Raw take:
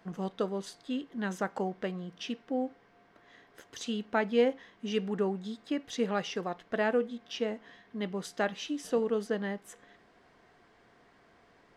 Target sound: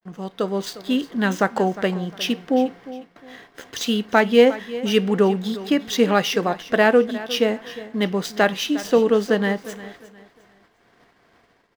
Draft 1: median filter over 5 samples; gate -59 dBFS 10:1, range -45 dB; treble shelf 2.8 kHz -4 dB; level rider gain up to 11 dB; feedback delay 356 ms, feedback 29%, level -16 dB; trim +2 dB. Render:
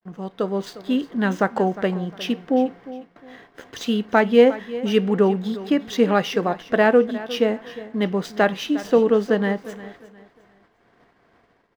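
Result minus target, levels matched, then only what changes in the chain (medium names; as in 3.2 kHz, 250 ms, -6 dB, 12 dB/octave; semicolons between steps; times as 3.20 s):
4 kHz band -5.0 dB
change: treble shelf 2.8 kHz +5.5 dB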